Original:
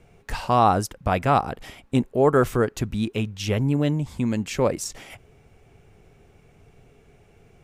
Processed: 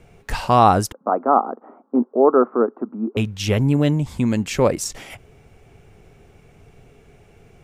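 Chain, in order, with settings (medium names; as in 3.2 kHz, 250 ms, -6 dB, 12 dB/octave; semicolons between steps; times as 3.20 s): 0.92–3.17 s: Chebyshev band-pass 230–1300 Hz, order 4; trim +4.5 dB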